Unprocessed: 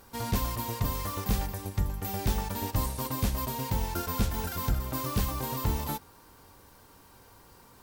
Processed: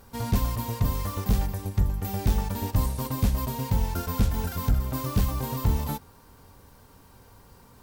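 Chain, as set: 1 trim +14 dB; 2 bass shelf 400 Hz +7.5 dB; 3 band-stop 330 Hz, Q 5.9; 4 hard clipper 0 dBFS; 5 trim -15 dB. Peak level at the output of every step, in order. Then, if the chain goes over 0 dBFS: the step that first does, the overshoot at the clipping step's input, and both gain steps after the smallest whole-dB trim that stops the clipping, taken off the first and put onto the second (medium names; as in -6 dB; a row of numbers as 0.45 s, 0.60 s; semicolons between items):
-4.0 dBFS, +3.0 dBFS, +3.5 dBFS, 0.0 dBFS, -15.0 dBFS; step 2, 3.5 dB; step 1 +10 dB, step 5 -11 dB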